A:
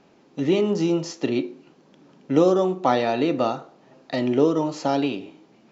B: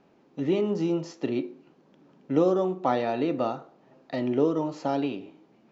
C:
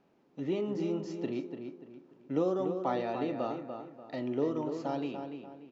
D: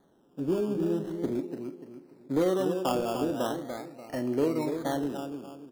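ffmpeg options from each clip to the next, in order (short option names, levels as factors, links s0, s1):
-af "highshelf=f=3500:g=-9.5,volume=0.596"
-filter_complex "[0:a]asplit=2[s0][s1];[s1]adelay=292,lowpass=f=3000:p=1,volume=0.447,asplit=2[s2][s3];[s3]adelay=292,lowpass=f=3000:p=1,volume=0.36,asplit=2[s4][s5];[s5]adelay=292,lowpass=f=3000:p=1,volume=0.36,asplit=2[s6][s7];[s7]adelay=292,lowpass=f=3000:p=1,volume=0.36[s8];[s0][s2][s4][s6][s8]amix=inputs=5:normalize=0,volume=0.422"
-filter_complex "[0:a]acrossover=split=700[s0][s1];[s1]acrusher=samples=17:mix=1:aa=0.000001:lfo=1:lforange=10.2:lforate=0.41[s2];[s0][s2]amix=inputs=2:normalize=0,asoftclip=type=hard:threshold=0.075,volume=1.68"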